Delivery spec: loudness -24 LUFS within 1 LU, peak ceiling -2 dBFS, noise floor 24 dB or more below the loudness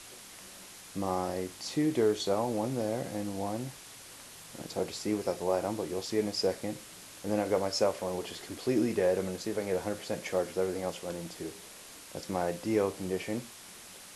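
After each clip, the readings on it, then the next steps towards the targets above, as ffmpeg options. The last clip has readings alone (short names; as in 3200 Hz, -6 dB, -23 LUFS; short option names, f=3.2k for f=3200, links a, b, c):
noise floor -50 dBFS; noise floor target -57 dBFS; loudness -32.5 LUFS; peak -14.5 dBFS; loudness target -24.0 LUFS
-> -af "afftdn=nr=7:nf=-50"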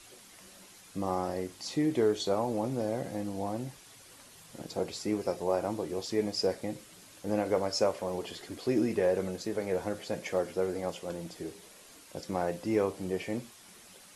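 noise floor -54 dBFS; noise floor target -57 dBFS
-> -af "afftdn=nr=6:nf=-54"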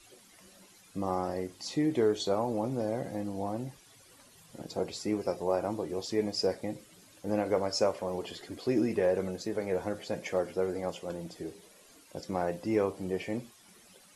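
noise floor -59 dBFS; loudness -32.5 LUFS; peak -14.5 dBFS; loudness target -24.0 LUFS
-> -af "volume=8.5dB"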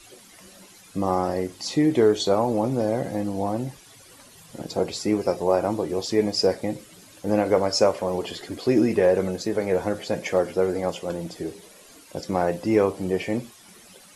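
loudness -24.0 LUFS; peak -6.0 dBFS; noise floor -50 dBFS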